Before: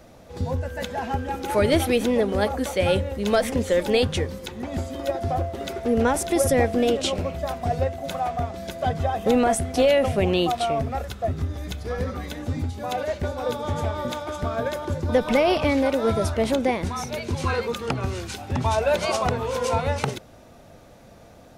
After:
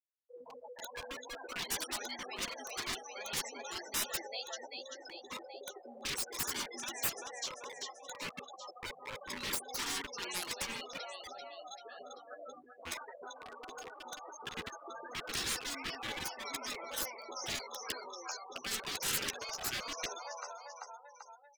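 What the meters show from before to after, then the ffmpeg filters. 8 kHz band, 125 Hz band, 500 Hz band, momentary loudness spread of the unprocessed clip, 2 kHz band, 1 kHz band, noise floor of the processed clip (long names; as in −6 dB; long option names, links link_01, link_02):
−4.0 dB, −30.0 dB, −25.0 dB, 10 LU, −10.5 dB, −17.5 dB, −57 dBFS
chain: -filter_complex "[0:a]highshelf=frequency=4400:width_type=q:width=1.5:gain=11.5,acrossover=split=5600[link_01][link_02];[link_02]acompressor=threshold=-40dB:ratio=4:attack=1:release=60[link_03];[link_01][link_03]amix=inputs=2:normalize=0,afftfilt=real='re*gte(hypot(re,im),0.0794)':imag='im*gte(hypot(re,im),0.0794)':win_size=1024:overlap=0.75,highpass=frequency=820:width=0.5412,highpass=frequency=820:width=1.3066,asplit=2[link_04][link_05];[link_05]adelay=12,volume=-6dB[link_06];[link_04][link_06]amix=inputs=2:normalize=0,asplit=2[link_07][link_08];[link_08]aecho=0:1:389|778|1167|1556:0.0891|0.0499|0.0279|0.0157[link_09];[link_07][link_09]amix=inputs=2:normalize=0,acontrast=32,volume=23.5dB,asoftclip=hard,volume=-23.5dB,afftfilt=real='re*lt(hypot(re,im),0.0398)':imag='im*lt(hypot(re,im),0.0398)':win_size=1024:overlap=0.75,volume=3dB"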